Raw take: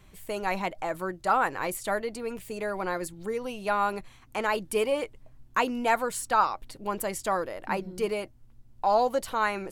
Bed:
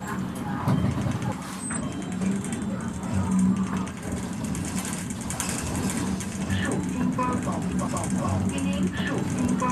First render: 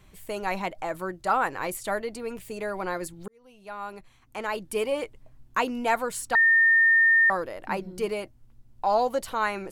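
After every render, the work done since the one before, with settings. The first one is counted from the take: 3.28–5.04 s: fade in linear; 6.35–7.30 s: bleep 1.82 kHz -15.5 dBFS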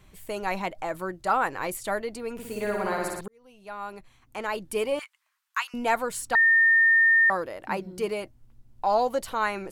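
2.33–3.21 s: flutter echo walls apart 9.9 m, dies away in 1.2 s; 4.99–5.74 s: steep high-pass 1.1 kHz; 7.17–8.22 s: high-pass 57 Hz 6 dB/octave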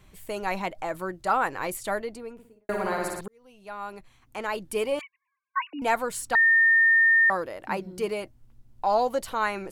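1.90–2.69 s: studio fade out; 5.01–5.82 s: formants replaced by sine waves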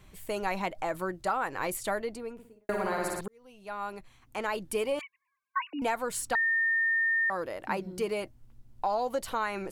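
compression 6:1, threshold -26 dBFS, peak gain reduction 8 dB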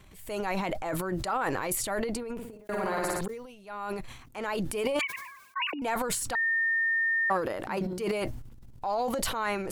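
transient shaper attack -5 dB, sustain +12 dB; decay stretcher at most 61 dB/s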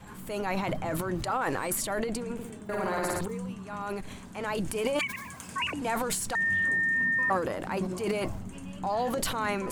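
add bed -15.5 dB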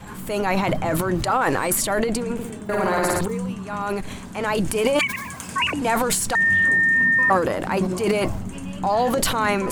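trim +9 dB

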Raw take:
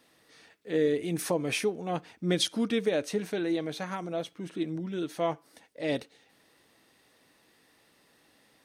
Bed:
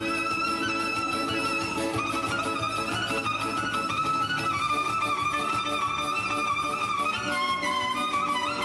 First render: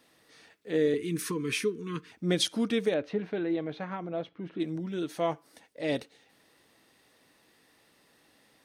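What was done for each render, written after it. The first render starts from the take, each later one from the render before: 0.94–2.12 s: Chebyshev band-stop 460–1000 Hz, order 4; 2.94–4.60 s: distance through air 320 m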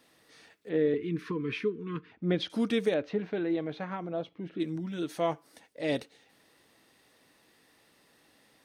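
0.69–2.50 s: distance through air 330 m; 3.00–3.50 s: peaking EQ 10 kHz -14 dB 0.36 oct; 4.12–4.98 s: peaking EQ 2.5 kHz -> 340 Hz -14.5 dB 0.29 oct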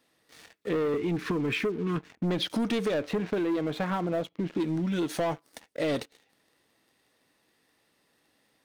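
waveshaping leveller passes 3; compression, threshold -26 dBFS, peak gain reduction 7.5 dB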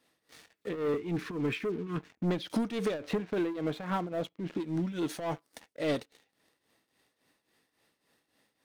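tremolo triangle 3.6 Hz, depth 80%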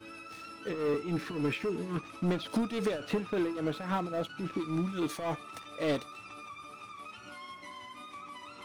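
add bed -19.5 dB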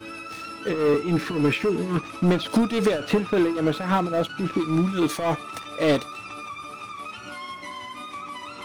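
trim +10 dB

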